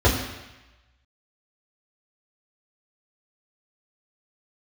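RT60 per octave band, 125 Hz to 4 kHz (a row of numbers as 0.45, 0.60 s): 1.0, 0.95, 0.95, 1.1, 1.2, 1.1 s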